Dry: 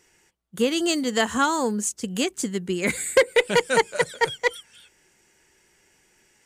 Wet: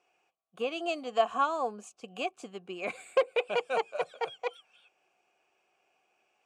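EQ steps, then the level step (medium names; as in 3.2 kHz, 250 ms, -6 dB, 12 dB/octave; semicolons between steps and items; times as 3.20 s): vowel filter a; +5.0 dB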